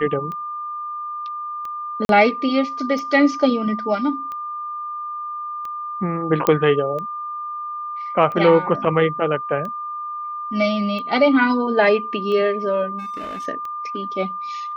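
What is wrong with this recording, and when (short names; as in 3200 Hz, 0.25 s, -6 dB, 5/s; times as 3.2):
tick 45 rpm -20 dBFS
tone 1200 Hz -26 dBFS
2.05–2.09 gap 42 ms
6.47 pop -5 dBFS
12.98–13.47 clipped -27 dBFS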